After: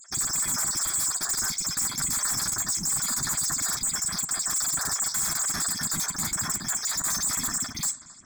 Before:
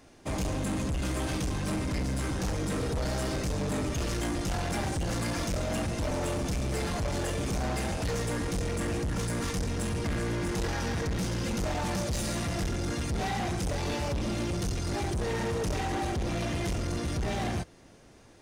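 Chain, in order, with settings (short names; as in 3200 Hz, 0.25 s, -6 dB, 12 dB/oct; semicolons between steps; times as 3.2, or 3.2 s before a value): random spectral dropouts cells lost 54%; inverted band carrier 3600 Hz; reverb RT60 0.60 s, pre-delay 3 ms, DRR 12.5 dB; wide varispeed 2.23×; in parallel at -12 dB: bit-crush 7-bit; on the sum: darkening echo 0.266 s, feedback 56%, low-pass 2800 Hz, level -23 dB; sine folder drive 12 dB, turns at -21 dBFS; low shelf 280 Hz -8 dB; fixed phaser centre 1200 Hz, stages 4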